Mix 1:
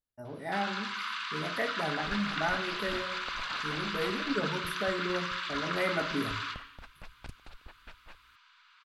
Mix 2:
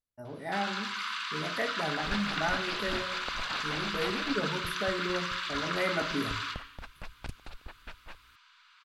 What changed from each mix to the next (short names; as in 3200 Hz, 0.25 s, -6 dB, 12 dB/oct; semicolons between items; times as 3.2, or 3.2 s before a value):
first sound: add high shelf 6600 Hz +9 dB; second sound +5.0 dB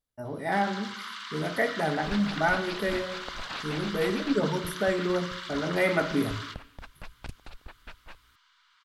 speech +6.5 dB; first sound: send -10.0 dB